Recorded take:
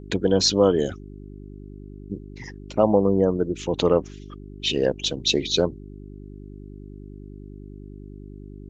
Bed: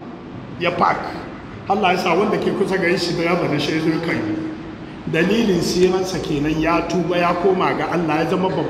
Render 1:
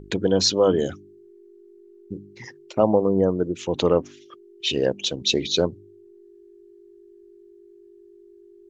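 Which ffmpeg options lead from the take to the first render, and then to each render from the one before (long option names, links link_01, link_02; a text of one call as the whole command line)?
ffmpeg -i in.wav -af "bandreject=frequency=50:width_type=h:width=4,bandreject=frequency=100:width_type=h:width=4,bandreject=frequency=150:width_type=h:width=4,bandreject=frequency=200:width_type=h:width=4,bandreject=frequency=250:width_type=h:width=4,bandreject=frequency=300:width_type=h:width=4" out.wav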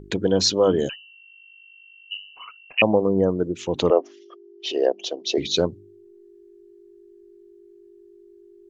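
ffmpeg -i in.wav -filter_complex "[0:a]asettb=1/sr,asplit=3[link_01][link_02][link_03];[link_01]atrim=end=0.894[link_04];[link_02]atrim=start=0.89:end=2.82,asetpts=PTS-STARTPTS,afade=type=in:duration=0.004:curve=qsin,afade=type=out:start_time=1.926:duration=0.004:curve=qsin,lowpass=frequency=2600:width_type=q:width=0.5098,lowpass=frequency=2600:width_type=q:width=0.6013,lowpass=frequency=2600:width_type=q:width=0.9,lowpass=frequency=2600:width_type=q:width=2.563,afreqshift=-3100[link_05];[link_03]atrim=start=2.816[link_06];[link_04][link_05]acrossfade=duration=0.004:curve1=hsin:curve2=qsin[link_07];[link_07][link_06]acrossfade=duration=0.004:curve1=qsin:curve2=hsin,asettb=1/sr,asplit=3[link_08][link_09][link_10];[link_08]atrim=end=3.904[link_11];[link_09]atrim=start=3.9:end=5.38,asetpts=PTS-STARTPTS,afade=type=in:duration=0.004:curve=qsin,afade=type=out:start_time=1.476:duration=0.004:curve=qsin,highpass=frequency=340:width=0.5412,highpass=frequency=340:width=1.3066,equalizer=frequency=370:width_type=q:width=4:gain=4,equalizer=frequency=690:width_type=q:width=4:gain=10,equalizer=frequency=1500:width_type=q:width=4:gain=-6,equalizer=frequency=2400:width_type=q:width=4:gain=-8,equalizer=frequency=3800:width_type=q:width=4:gain=-7,lowpass=frequency=5600:width=0.5412,lowpass=frequency=5600:width=1.3066[link_12];[link_10]atrim=start=5.376[link_13];[link_11][link_12]acrossfade=duration=0.004:curve1=hsin:curve2=qsin[link_14];[link_14][link_13]acrossfade=duration=0.004:curve1=qsin:curve2=hsin" out.wav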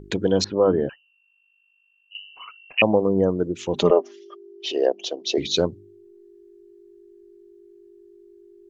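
ffmpeg -i in.wav -filter_complex "[0:a]asettb=1/sr,asplit=3[link_01][link_02][link_03];[link_01]atrim=end=0.444[link_04];[link_02]atrim=start=0.44:end=2.15,asetpts=PTS-STARTPTS,afade=type=in:duration=0.004:curve=qsin,afade=type=out:start_time=1.706:duration=0.004:curve=qsin,lowpass=frequency=1800:width=0.5412,lowpass=frequency=1800:width=1.3066[link_05];[link_03]atrim=start=2.146[link_06];[link_04][link_05]acrossfade=duration=0.004:curve1=hsin:curve2=qsin[link_07];[link_07][link_06]acrossfade=duration=0.004:curve1=qsin:curve2=hsin,asettb=1/sr,asplit=3[link_08][link_09][link_10];[link_08]atrim=end=3.734[link_11];[link_09]atrim=start=3.73:end=4.65,asetpts=PTS-STARTPTS,afade=type=in:duration=0.004:curve=qsin,afade=type=out:start_time=0.916:duration=0.004:curve=qsin,aecho=1:1:5:0.66,atrim=end_sample=40572[link_12];[link_10]atrim=start=4.646[link_13];[link_11][link_12]acrossfade=duration=0.004:curve1=hsin:curve2=qsin[link_14];[link_14][link_13]acrossfade=duration=0.004:curve1=qsin:curve2=hsin" out.wav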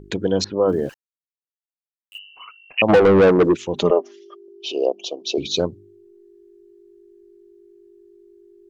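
ffmpeg -i in.wav -filter_complex "[0:a]asplit=3[link_01][link_02][link_03];[link_01]afade=type=out:start_time=0.67:duration=0.02[link_04];[link_02]aeval=exprs='val(0)*gte(abs(val(0)),0.00668)':channel_layout=same,afade=type=in:start_time=0.67:duration=0.02,afade=type=out:start_time=2.17:duration=0.02[link_05];[link_03]afade=type=in:start_time=2.17:duration=0.02[link_06];[link_04][link_05][link_06]amix=inputs=3:normalize=0,asplit=3[link_07][link_08][link_09];[link_07]afade=type=out:start_time=2.88:duration=0.02[link_10];[link_08]asplit=2[link_11][link_12];[link_12]highpass=frequency=720:poles=1,volume=29dB,asoftclip=type=tanh:threshold=-4.5dB[link_13];[link_11][link_13]amix=inputs=2:normalize=0,lowpass=frequency=2500:poles=1,volume=-6dB,afade=type=in:start_time=2.88:duration=0.02,afade=type=out:start_time=3.55:duration=0.02[link_14];[link_09]afade=type=in:start_time=3.55:duration=0.02[link_15];[link_10][link_14][link_15]amix=inputs=3:normalize=0,asettb=1/sr,asplit=3[link_16][link_17][link_18];[link_16]atrim=end=4.484[link_19];[link_17]atrim=start=4.48:end=5.6,asetpts=PTS-STARTPTS,afade=type=in:duration=0.004:curve=qsin,afade=type=out:start_time=1.116:duration=0.004:curve=qsin,asuperstop=centerf=1700:order=20:qfactor=1.7[link_20];[link_18]atrim=start=5.596[link_21];[link_19][link_20]acrossfade=duration=0.004:curve1=hsin:curve2=qsin[link_22];[link_22][link_21]acrossfade=duration=0.004:curve1=qsin:curve2=hsin" out.wav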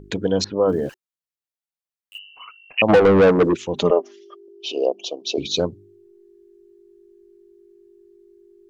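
ffmpeg -i in.wav -af "bandreject=frequency=370:width=12" out.wav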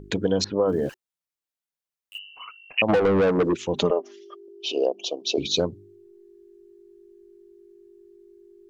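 ffmpeg -i in.wav -af "acompressor=threshold=-17dB:ratio=10" out.wav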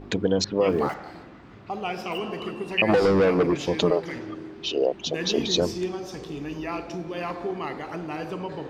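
ffmpeg -i in.wav -i bed.wav -filter_complex "[1:a]volume=-14dB[link_01];[0:a][link_01]amix=inputs=2:normalize=0" out.wav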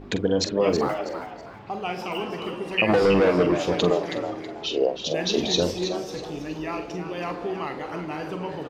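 ffmpeg -i in.wav -filter_complex "[0:a]asplit=2[link_01][link_02];[link_02]adelay=45,volume=-10dB[link_03];[link_01][link_03]amix=inputs=2:normalize=0,asplit=2[link_04][link_05];[link_05]asplit=3[link_06][link_07][link_08];[link_06]adelay=323,afreqshift=120,volume=-9.5dB[link_09];[link_07]adelay=646,afreqshift=240,volume=-20dB[link_10];[link_08]adelay=969,afreqshift=360,volume=-30.4dB[link_11];[link_09][link_10][link_11]amix=inputs=3:normalize=0[link_12];[link_04][link_12]amix=inputs=2:normalize=0" out.wav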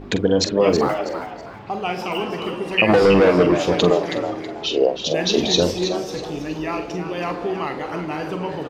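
ffmpeg -i in.wav -af "volume=5dB" out.wav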